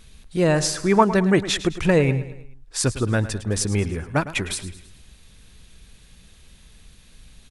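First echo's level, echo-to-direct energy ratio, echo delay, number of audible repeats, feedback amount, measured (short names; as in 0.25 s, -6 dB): -14.5 dB, -13.5 dB, 0.107 s, 4, 48%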